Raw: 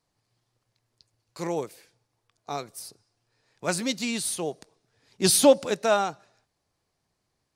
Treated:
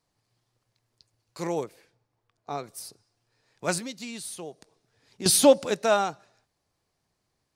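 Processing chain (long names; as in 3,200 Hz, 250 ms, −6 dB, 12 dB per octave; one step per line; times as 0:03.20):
0:01.64–0:02.64: high-shelf EQ 3,400 Hz −11 dB
0:03.78–0:05.26: downward compressor 2.5 to 1, threshold −39 dBFS, peak gain reduction 13 dB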